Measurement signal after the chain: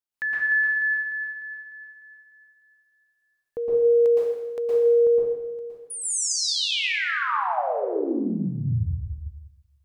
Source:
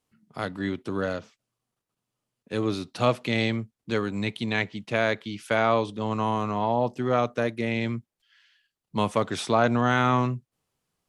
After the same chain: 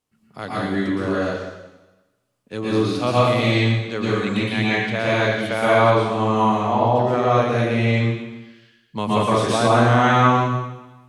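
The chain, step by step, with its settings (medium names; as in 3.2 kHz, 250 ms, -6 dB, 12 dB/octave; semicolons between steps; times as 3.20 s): plate-style reverb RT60 1.1 s, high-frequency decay 1×, pre-delay 105 ms, DRR -7.5 dB; trim -1 dB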